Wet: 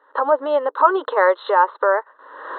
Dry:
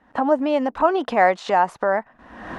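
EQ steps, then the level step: brick-wall FIR band-pass 290–4200 Hz; peaking EQ 1.2 kHz +2.5 dB 0.77 oct; static phaser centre 480 Hz, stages 8; +6.0 dB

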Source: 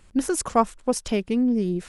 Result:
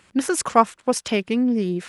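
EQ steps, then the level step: high-pass 120 Hz 12 dB/octave; peaking EQ 2.1 kHz +7 dB 2.5 oct; +1.0 dB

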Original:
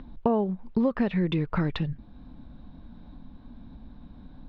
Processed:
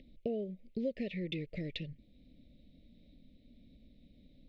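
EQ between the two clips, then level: elliptic band-stop 580–2100 Hz, stop band 40 dB; bass shelf 420 Hz -12 dB; band-stop 1.6 kHz, Q 13; -3.5 dB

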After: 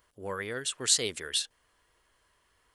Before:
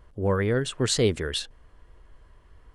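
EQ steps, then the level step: tilt EQ +4 dB/octave; -7.5 dB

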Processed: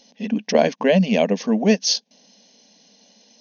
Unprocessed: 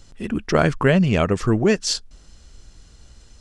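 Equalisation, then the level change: brick-wall FIR band-pass 180–6700 Hz; static phaser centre 350 Hz, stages 6; +4.5 dB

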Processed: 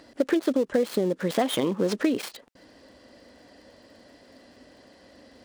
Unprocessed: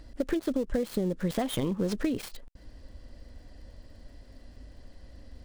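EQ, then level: high-pass 280 Hz 12 dB/octave; treble shelf 7.5 kHz -5.5 dB; +7.5 dB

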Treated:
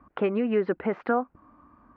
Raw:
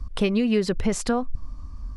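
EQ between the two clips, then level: distance through air 120 m; cabinet simulation 300–2200 Hz, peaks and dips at 320 Hz +5 dB, 790 Hz +4 dB, 1.4 kHz +6 dB; 0.0 dB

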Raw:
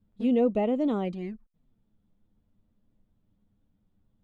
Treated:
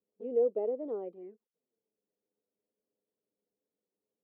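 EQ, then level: ladder band-pass 480 Hz, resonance 70%; 0.0 dB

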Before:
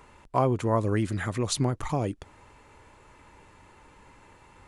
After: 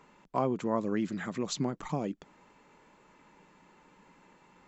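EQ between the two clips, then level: brick-wall FIR low-pass 7.8 kHz; resonant low shelf 130 Hz -10 dB, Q 3; -6.0 dB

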